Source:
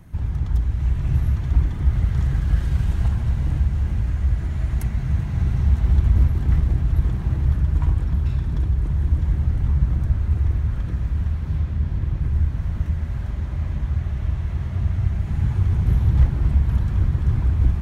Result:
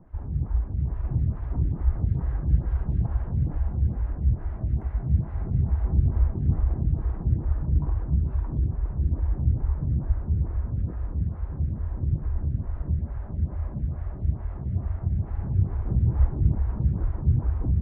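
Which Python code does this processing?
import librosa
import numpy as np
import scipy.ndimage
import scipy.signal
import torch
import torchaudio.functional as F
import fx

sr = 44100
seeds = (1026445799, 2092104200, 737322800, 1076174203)

p1 = scipy.signal.sosfilt(scipy.signal.butter(2, 1000.0, 'lowpass', fs=sr, output='sos'), x)
p2 = p1 + fx.echo_single(p1, sr, ms=624, db=-8.0, dry=0)
y = fx.stagger_phaser(p2, sr, hz=2.3)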